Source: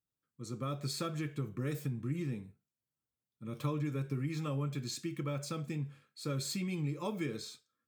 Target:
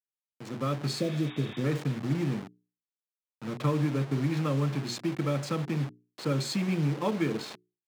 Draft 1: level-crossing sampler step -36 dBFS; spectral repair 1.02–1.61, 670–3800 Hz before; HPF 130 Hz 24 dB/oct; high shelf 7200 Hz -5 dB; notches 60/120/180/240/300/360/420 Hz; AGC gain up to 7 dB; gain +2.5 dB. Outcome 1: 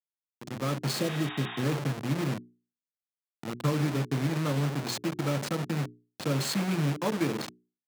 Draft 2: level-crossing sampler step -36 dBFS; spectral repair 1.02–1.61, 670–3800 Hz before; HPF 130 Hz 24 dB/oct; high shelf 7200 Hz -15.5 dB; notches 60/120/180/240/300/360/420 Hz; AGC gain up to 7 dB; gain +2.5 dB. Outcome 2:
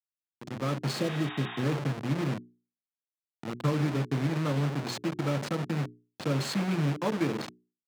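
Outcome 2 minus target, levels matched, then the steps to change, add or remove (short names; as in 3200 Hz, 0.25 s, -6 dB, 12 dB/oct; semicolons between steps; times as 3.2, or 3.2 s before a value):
level-crossing sampler: distortion +7 dB
change: level-crossing sampler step -42.5 dBFS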